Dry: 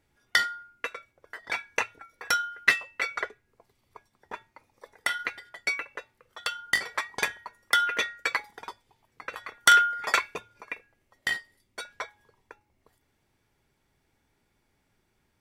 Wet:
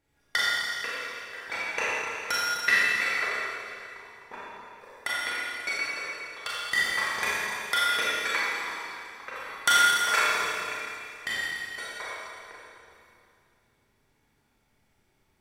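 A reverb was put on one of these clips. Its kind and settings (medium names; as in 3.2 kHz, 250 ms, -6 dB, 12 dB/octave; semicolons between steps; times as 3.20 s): Schroeder reverb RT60 2.5 s, combs from 28 ms, DRR -7.5 dB; trim -5.5 dB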